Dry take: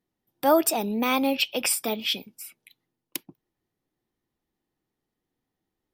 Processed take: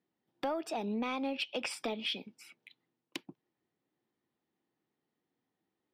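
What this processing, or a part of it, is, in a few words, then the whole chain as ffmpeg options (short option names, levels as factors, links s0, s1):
AM radio: -af "highpass=150,lowpass=3900,acompressor=threshold=0.0316:ratio=8,asoftclip=type=tanh:threshold=0.0794,volume=0.891"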